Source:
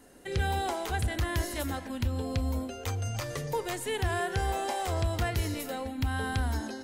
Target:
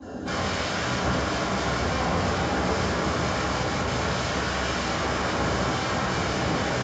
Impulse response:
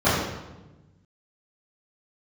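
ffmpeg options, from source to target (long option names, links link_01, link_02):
-filter_complex "[0:a]acrossover=split=2600[link_01][link_02];[link_02]acompressor=threshold=-55dB:ratio=4:attack=1:release=60[link_03];[link_01][link_03]amix=inputs=2:normalize=0,equalizer=frequency=2100:width_type=o:width=0.32:gain=-11.5,acrossover=split=140|1800[link_04][link_05][link_06];[link_04]acompressor=threshold=-30dB:ratio=4[link_07];[link_05]acompressor=threshold=-38dB:ratio=4[link_08];[link_06]acompressor=threshold=-51dB:ratio=4[link_09];[link_07][link_08][link_09]amix=inputs=3:normalize=0,alimiter=level_in=4.5dB:limit=-24dB:level=0:latency=1:release=146,volume=-4.5dB,aresample=16000,aeval=exprs='(mod(112*val(0)+1,2)-1)/112':channel_layout=same,aresample=44100,asplit=2[link_10][link_11];[link_11]adelay=16,volume=-12dB[link_12];[link_10][link_12]amix=inputs=2:normalize=0[link_13];[1:a]atrim=start_sample=2205[link_14];[link_13][link_14]afir=irnorm=-1:irlink=0,volume=-1.5dB"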